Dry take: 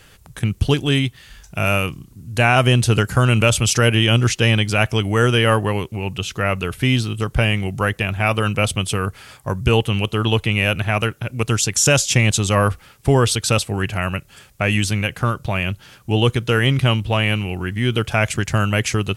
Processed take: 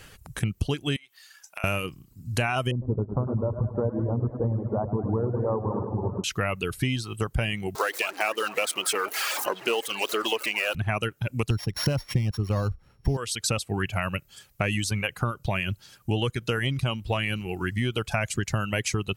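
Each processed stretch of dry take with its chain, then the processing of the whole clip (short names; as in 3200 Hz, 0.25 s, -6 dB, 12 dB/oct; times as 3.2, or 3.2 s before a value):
0.96–1.64 HPF 850 Hz + compressor, threshold -33 dBFS
2.71–6.24 elliptic low-pass 1000 Hz, stop band 60 dB + warbling echo 0.103 s, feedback 75%, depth 84 cents, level -7 dB
7.75–10.75 zero-crossing step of -20.5 dBFS + HPF 330 Hz 24 dB/oct + delay with a stepping band-pass 0.223 s, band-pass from 1000 Hz, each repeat 0.7 oct, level -9.5 dB
11.5–13.17 sample sorter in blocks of 8 samples + tilt -3 dB/oct
whole clip: notch 3500 Hz, Q 20; reverb removal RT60 1.1 s; compressor, threshold -23 dBFS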